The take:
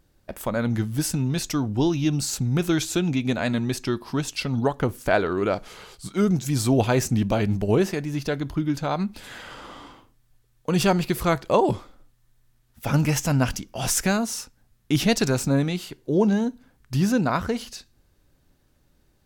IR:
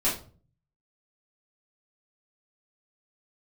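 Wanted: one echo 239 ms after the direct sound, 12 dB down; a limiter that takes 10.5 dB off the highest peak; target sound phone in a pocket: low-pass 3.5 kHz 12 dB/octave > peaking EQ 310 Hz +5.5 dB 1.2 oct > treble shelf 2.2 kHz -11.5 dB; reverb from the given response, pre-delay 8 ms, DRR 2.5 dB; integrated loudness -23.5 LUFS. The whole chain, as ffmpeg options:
-filter_complex "[0:a]alimiter=limit=0.133:level=0:latency=1,aecho=1:1:239:0.251,asplit=2[s0][s1];[1:a]atrim=start_sample=2205,adelay=8[s2];[s1][s2]afir=irnorm=-1:irlink=0,volume=0.224[s3];[s0][s3]amix=inputs=2:normalize=0,lowpass=3500,equalizer=f=310:t=o:w=1.2:g=5.5,highshelf=f=2200:g=-11.5,volume=0.891"

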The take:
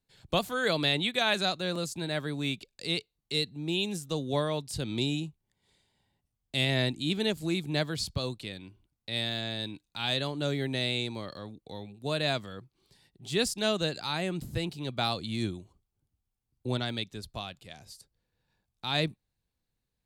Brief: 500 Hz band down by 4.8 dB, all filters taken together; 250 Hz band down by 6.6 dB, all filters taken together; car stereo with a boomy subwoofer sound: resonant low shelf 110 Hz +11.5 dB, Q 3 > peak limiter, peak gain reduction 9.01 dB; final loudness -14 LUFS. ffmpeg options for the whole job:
-af "lowshelf=f=110:t=q:w=3:g=11.5,equalizer=f=250:t=o:g=-3.5,equalizer=f=500:t=o:g=-4.5,volume=10.6,alimiter=limit=1:level=0:latency=1"

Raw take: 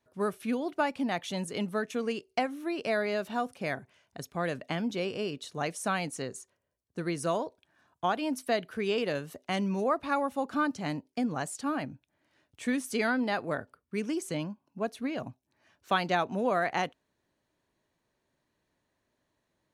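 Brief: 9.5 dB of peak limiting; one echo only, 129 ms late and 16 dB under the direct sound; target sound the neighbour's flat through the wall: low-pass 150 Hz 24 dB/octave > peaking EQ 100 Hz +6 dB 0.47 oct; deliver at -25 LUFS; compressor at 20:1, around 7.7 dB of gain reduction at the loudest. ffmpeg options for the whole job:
-af "acompressor=threshold=0.0316:ratio=20,alimiter=level_in=1.41:limit=0.0631:level=0:latency=1,volume=0.708,lowpass=f=150:w=0.5412,lowpass=f=150:w=1.3066,equalizer=f=100:t=o:w=0.47:g=6,aecho=1:1:129:0.158,volume=23.7"

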